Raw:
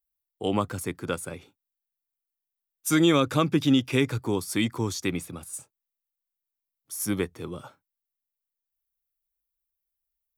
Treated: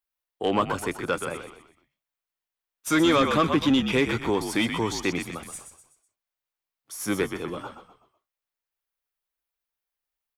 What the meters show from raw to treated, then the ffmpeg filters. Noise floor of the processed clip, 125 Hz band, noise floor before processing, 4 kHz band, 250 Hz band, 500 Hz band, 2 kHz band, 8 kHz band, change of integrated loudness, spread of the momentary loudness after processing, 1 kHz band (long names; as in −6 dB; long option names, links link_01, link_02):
below −85 dBFS, −3.5 dB, below −85 dBFS, +2.0 dB, +0.5 dB, +2.5 dB, +4.5 dB, −1.5 dB, +1.0 dB, 17 LU, +5.5 dB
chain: -filter_complex "[0:a]asplit=5[link_01][link_02][link_03][link_04][link_05];[link_02]adelay=125,afreqshift=-56,volume=-9dB[link_06];[link_03]adelay=250,afreqshift=-112,volume=-17dB[link_07];[link_04]adelay=375,afreqshift=-168,volume=-24.9dB[link_08];[link_05]adelay=500,afreqshift=-224,volume=-32.9dB[link_09];[link_01][link_06][link_07][link_08][link_09]amix=inputs=5:normalize=0,asplit=2[link_10][link_11];[link_11]highpass=frequency=720:poles=1,volume=17dB,asoftclip=type=tanh:threshold=-8dB[link_12];[link_10][link_12]amix=inputs=2:normalize=0,lowpass=frequency=2200:poles=1,volume=-6dB,volume=-2dB"